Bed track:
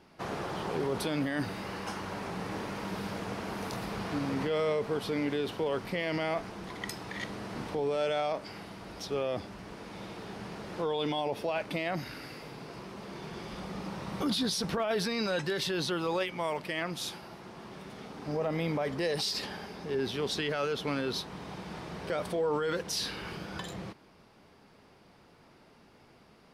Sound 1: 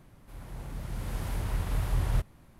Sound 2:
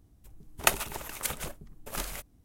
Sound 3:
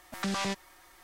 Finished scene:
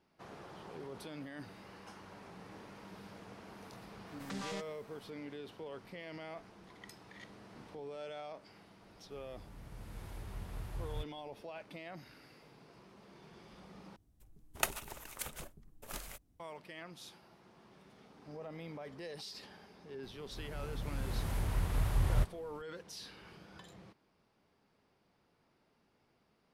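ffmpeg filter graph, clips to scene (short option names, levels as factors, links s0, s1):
-filter_complex "[1:a]asplit=2[s0][s1];[0:a]volume=0.178,asplit=2[s2][s3];[s2]atrim=end=13.964[s4];[2:a]atrim=end=2.44,asetpts=PTS-STARTPTS,volume=0.335[s5];[s3]atrim=start=16.396[s6];[3:a]atrim=end=1.03,asetpts=PTS-STARTPTS,volume=0.266,afade=t=in:d=0.004:c=hsin,afade=t=out:st=1.026:d=0.004:c=hsin,adelay=4070[s7];[s0]atrim=end=2.59,asetpts=PTS-STARTPTS,volume=0.2,afade=t=in:d=0.004:c=hsin,afade=t=out:st=2.586:d=0.004:c=hsin,adelay=388962S[s8];[s1]atrim=end=2.59,asetpts=PTS-STARTPTS,volume=0.75,afade=t=in:d=0.004:c=hsin,afade=t=out:st=2.586:d=0.004:c=hsin,adelay=20030[s9];[s4][s5]acrossfade=d=0.004:c1=hsin:c2=hsin[s10];[s10][s6]acrossfade=d=0.004:c1=hsin:c2=hsin[s11];[s11][s7][s8][s9]amix=inputs=4:normalize=0"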